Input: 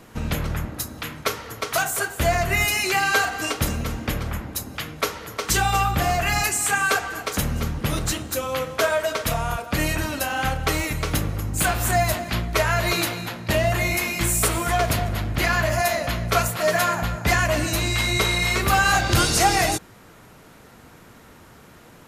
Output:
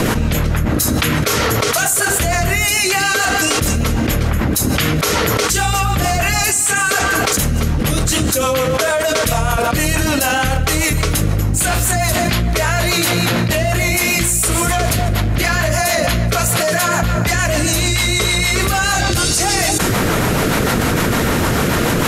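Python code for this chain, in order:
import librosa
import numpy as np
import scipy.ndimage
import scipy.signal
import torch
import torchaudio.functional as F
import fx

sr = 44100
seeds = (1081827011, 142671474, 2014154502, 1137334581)

y = fx.dynamic_eq(x, sr, hz=8500.0, q=0.7, threshold_db=-40.0, ratio=4.0, max_db=7)
y = fx.rotary(y, sr, hz=6.7)
y = fx.env_flatten(y, sr, amount_pct=100)
y = F.gain(torch.from_numpy(y), -1.0).numpy()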